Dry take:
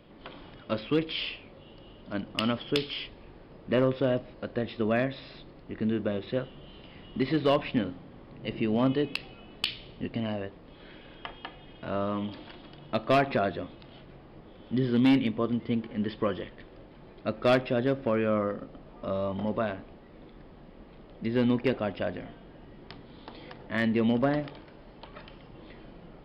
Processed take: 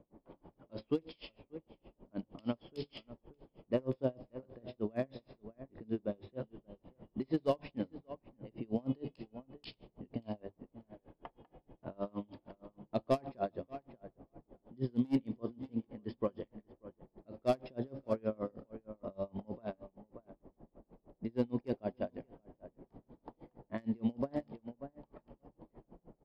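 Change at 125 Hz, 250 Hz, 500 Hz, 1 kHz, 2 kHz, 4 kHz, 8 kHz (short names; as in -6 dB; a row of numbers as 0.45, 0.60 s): -10.0 dB, -10.0 dB, -9.5 dB, -11.5 dB, -20.5 dB, -19.5 dB, n/a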